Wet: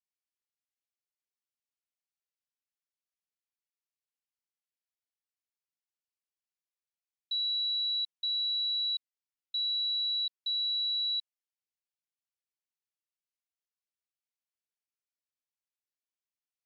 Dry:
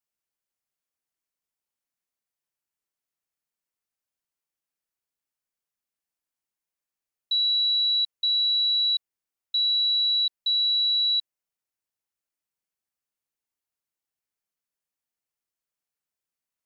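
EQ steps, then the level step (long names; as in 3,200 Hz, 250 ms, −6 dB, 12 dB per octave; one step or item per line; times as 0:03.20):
resonant band-pass 3,700 Hz, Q 1.9
parametric band 3,700 Hz −8.5 dB
0.0 dB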